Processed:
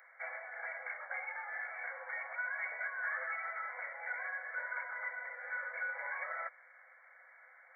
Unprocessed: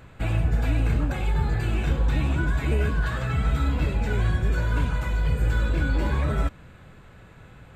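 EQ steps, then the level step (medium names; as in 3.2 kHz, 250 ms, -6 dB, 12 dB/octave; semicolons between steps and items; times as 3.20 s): rippled Chebyshev high-pass 500 Hz, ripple 6 dB; brick-wall FIR low-pass 2.3 kHz; differentiator; +12.0 dB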